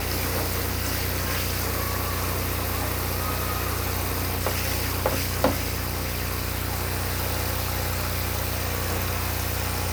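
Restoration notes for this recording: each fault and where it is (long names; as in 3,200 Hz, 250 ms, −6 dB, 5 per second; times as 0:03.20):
mains buzz 60 Hz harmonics 22 −32 dBFS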